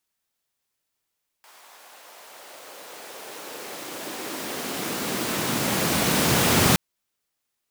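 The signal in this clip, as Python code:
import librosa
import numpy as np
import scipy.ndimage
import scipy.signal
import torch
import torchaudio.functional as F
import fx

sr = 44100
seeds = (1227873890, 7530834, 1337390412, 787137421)

y = fx.riser_noise(sr, seeds[0], length_s=5.32, colour='pink', kind='highpass', start_hz=860.0, end_hz=120.0, q=1.5, swell_db=32, law='exponential')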